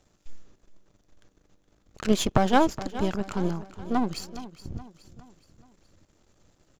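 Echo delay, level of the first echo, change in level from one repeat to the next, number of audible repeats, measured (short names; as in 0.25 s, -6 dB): 0.419 s, -15.0 dB, -7.0 dB, 3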